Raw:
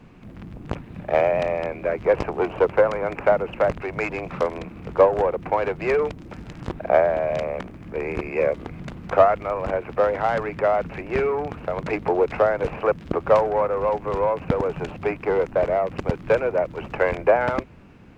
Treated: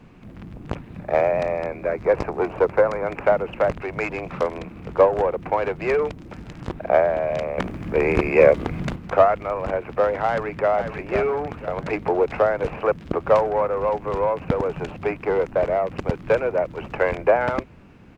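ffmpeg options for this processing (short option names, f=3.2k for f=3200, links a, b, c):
-filter_complex "[0:a]asettb=1/sr,asplit=3[a][b][c];[a]atrim=end=0.974[d];[b]atrim=start=0.97:end=3.07,asetpts=PTS-STARTPTS,afade=t=in:d=0.004:c=qsin,afade=t=out:st=2.096:d=0.004:c=qsin,equalizer=f=3k:t=o:w=0.37:g=-7.5[e];[c]atrim=start=3.066[f];[d][e]acrossfade=d=0.004:c1=hsin:c2=qsin[g];[g][f]acrossfade=d=0.004:c1=qsin:c2=hsin,asplit=2[h][i];[i]afade=t=in:st=10.27:d=0.01,afade=t=out:st=10.72:d=0.01,aecho=0:1:500|1000|1500|2000|2500:0.421697|0.168679|0.0674714|0.0269886|0.0107954[j];[h][j]amix=inputs=2:normalize=0,asplit=3[k][l][m];[k]atrim=end=7.582[n];[l]atrim=start=7.578:end=8.962,asetpts=PTS-STARTPTS,volume=8dB[o];[m]atrim=start=8.958[p];[n][o]acrossfade=d=0.004:c1=hsin:c2=hsin[q];[q][p]acrossfade=d=0.004:c1=hsin:c2=hsin"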